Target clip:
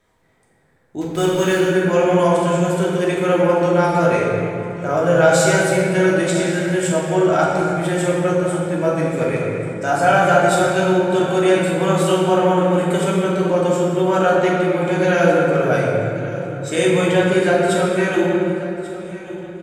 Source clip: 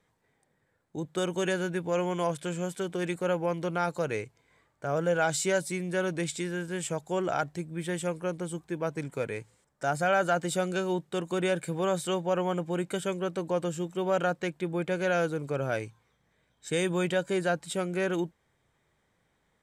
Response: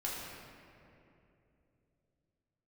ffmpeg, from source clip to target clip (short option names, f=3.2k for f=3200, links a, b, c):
-filter_complex "[0:a]aecho=1:1:1139|2278|3417:0.141|0.0551|0.0215,asettb=1/sr,asplit=3[a][b][c];[a]atrim=end=1.014[d];[b]atrim=start=1.01:end=1.59,asetpts=PTS-STARTPTS,afade=t=in:d=0.004:c=qsin,afade=t=out:st=0.576:d=0.004:c=qsin,acrusher=bits=6:mix=0:aa=0.5[e];[c]atrim=start=1.586[f];[d][e]acrossfade=d=0.004:c1=hsin:c2=qsin[g];[g][f]acrossfade=d=0.004:c1=qsin:c2=hsin[h];[1:a]atrim=start_sample=2205,asetrate=39690,aresample=44100[i];[h][i]afir=irnorm=-1:irlink=0,volume=9dB"